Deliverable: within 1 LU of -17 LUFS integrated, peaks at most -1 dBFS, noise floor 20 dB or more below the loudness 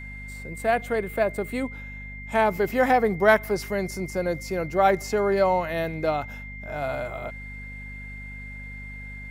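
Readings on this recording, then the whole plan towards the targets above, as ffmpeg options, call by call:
hum 50 Hz; highest harmonic 250 Hz; hum level -37 dBFS; steady tone 2.1 kHz; tone level -39 dBFS; loudness -24.5 LUFS; peak level -4.5 dBFS; loudness target -17.0 LUFS
-> -af "bandreject=f=50:t=h:w=4,bandreject=f=100:t=h:w=4,bandreject=f=150:t=h:w=4,bandreject=f=200:t=h:w=4,bandreject=f=250:t=h:w=4"
-af "bandreject=f=2100:w=30"
-af "volume=2.37,alimiter=limit=0.891:level=0:latency=1"

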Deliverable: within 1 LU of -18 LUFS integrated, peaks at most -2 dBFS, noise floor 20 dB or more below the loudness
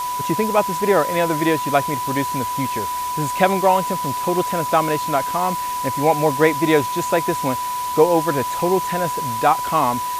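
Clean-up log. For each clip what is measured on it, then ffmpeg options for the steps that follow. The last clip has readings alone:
steady tone 990 Hz; tone level -22 dBFS; noise floor -25 dBFS; noise floor target -40 dBFS; loudness -19.5 LUFS; peak level -1.5 dBFS; loudness target -18.0 LUFS
-> -af "bandreject=f=990:w=30"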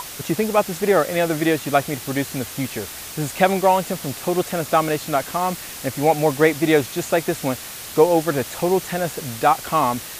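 steady tone not found; noise floor -35 dBFS; noise floor target -41 dBFS
-> -af "afftdn=nr=6:nf=-35"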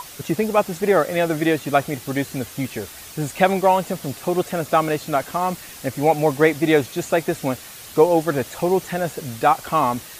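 noise floor -39 dBFS; noise floor target -41 dBFS
-> -af "afftdn=nr=6:nf=-39"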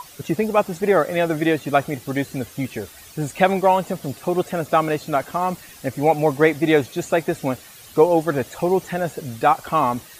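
noise floor -44 dBFS; loudness -21.0 LUFS; peak level -2.0 dBFS; loudness target -18.0 LUFS
-> -af "volume=1.41,alimiter=limit=0.794:level=0:latency=1"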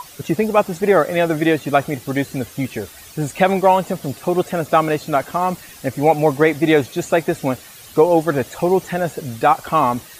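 loudness -18.5 LUFS; peak level -2.0 dBFS; noise floor -41 dBFS

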